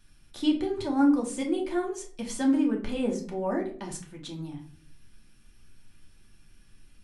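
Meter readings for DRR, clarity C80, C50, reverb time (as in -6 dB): 0.0 dB, 14.5 dB, 9.5 dB, 0.45 s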